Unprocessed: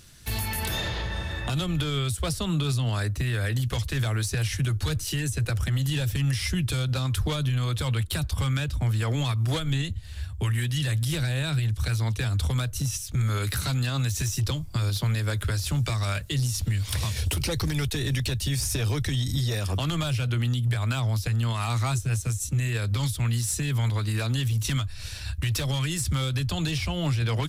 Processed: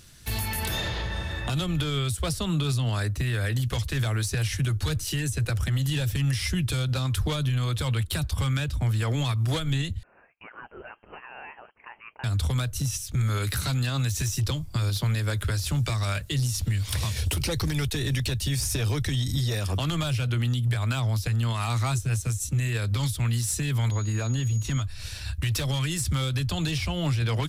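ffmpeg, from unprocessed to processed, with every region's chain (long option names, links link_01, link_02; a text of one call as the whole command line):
ffmpeg -i in.wav -filter_complex "[0:a]asettb=1/sr,asplit=3[link_01][link_02][link_03];[link_01]atrim=end=10.034[link_04];[link_02]atrim=start=10.03:end=12.24,asetpts=PTS-STARTPTS,afade=type=in:duration=0.004:curve=qsin,afade=type=out:start_time=2.206:duration=0.004:curve=qsin,highpass=frequency=710:width=0.5412,highpass=frequency=710:width=1.3066,equalizer=frequency=1400:width_type=o:width=1.4:gain=-9,lowpass=frequency=2800:width_type=q:width=0.5098,lowpass=frequency=2800:width_type=q:width=0.6013,lowpass=frequency=2800:width_type=q:width=0.9,lowpass=frequency=2800:width_type=q:width=2.563,afreqshift=-3300[link_05];[link_03]atrim=start=12.236[link_06];[link_04][link_05]acrossfade=duration=0.004:curve1=hsin:curve2=qsin[link_07];[link_07][link_06]acrossfade=duration=0.004:curve1=qsin:curve2=hsin,asettb=1/sr,asplit=3[link_08][link_09][link_10];[link_08]atrim=end=23.914[link_11];[link_09]atrim=start=23.91:end=24.82,asetpts=PTS-STARTPTS,afade=type=in:duration=0.004:curve=qsin,afade=type=out:start_time=0.906:duration=0.004:curve=qsin,highshelf=frequency=2700:gain=-11,aeval=exprs='val(0)+0.00891*sin(2*PI*6700*n/s)':channel_layout=same[link_12];[link_10]atrim=start=24.816[link_13];[link_11][link_12]acrossfade=duration=0.004:curve1=hsin:curve2=qsin[link_14];[link_14][link_13]acrossfade=duration=0.004:curve1=qsin:curve2=hsin" out.wav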